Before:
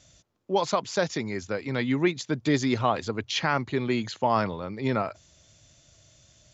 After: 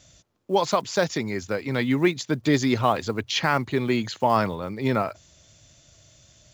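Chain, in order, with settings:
one scale factor per block 7 bits
level +3 dB

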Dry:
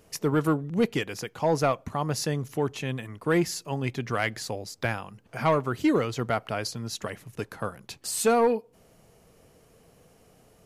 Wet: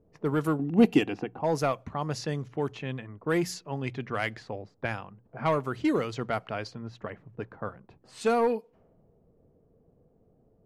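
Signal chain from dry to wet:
mains-hum notches 60/120/180 Hz
low-pass that shuts in the quiet parts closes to 440 Hz, open at −22 dBFS
0:00.59–0:01.41: hollow resonant body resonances 290/740/2,700 Hz, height 14 dB, ringing for 25 ms
level −3 dB

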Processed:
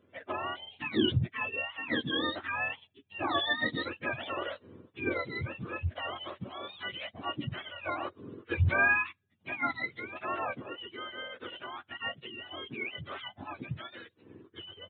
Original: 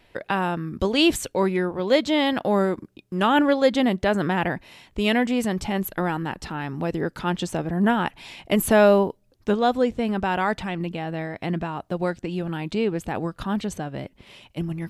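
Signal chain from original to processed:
frequency axis turned over on the octave scale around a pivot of 1,000 Hz
downsampling to 8,000 Hz
level −8 dB

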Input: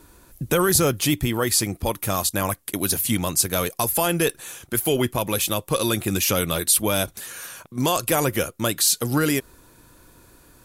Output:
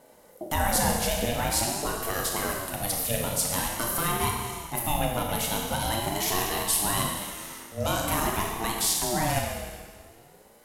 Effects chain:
four-comb reverb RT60 1.7 s, combs from 25 ms, DRR −0.5 dB
mains hum 60 Hz, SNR 32 dB
ring modulator whose carrier an LFO sweeps 450 Hz, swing 25%, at 0.46 Hz
level −5 dB

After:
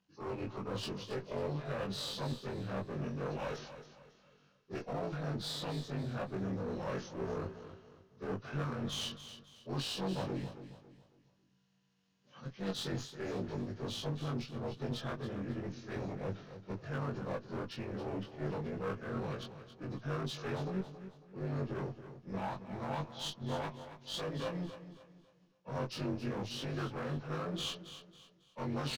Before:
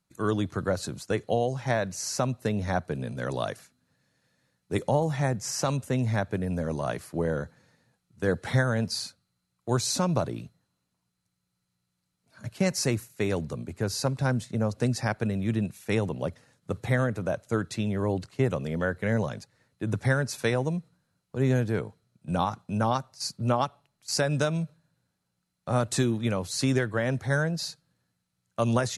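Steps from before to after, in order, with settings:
partials spread apart or drawn together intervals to 83%
low-pass filter 5,000 Hz 12 dB per octave
reversed playback
downward compressor 5 to 1, threshold −38 dBFS, peak gain reduction 16 dB
reversed playback
asymmetric clip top −46 dBFS
double-tracking delay 21 ms −2.5 dB
on a send: repeating echo 274 ms, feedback 35%, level −12 dB
on the sum: formants moved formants +2 semitones
level +2 dB

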